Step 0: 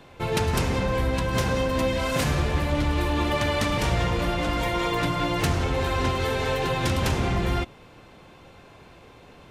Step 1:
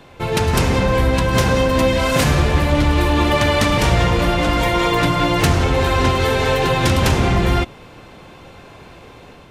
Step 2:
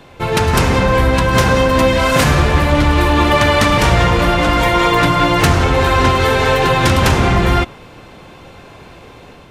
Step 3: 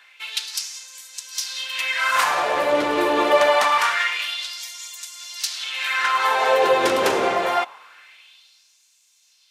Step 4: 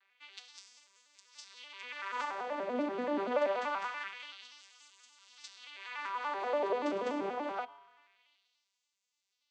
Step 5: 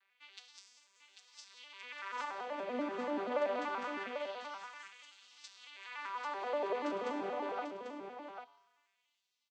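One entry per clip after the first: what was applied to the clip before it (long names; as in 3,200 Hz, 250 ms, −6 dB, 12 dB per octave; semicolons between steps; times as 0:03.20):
automatic gain control gain up to 3.5 dB; level +5 dB
dynamic equaliser 1,300 Hz, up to +4 dB, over −33 dBFS, Q 1; level +2.5 dB
auto-filter high-pass sine 0.25 Hz 420–6,700 Hz; level −7 dB
vocoder with an arpeggio as carrier major triad, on G3, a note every 96 ms; tuned comb filter 140 Hz, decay 1.2 s, harmonics odd, mix 60%; level −7.5 dB
single-tap delay 793 ms −7 dB; level −3.5 dB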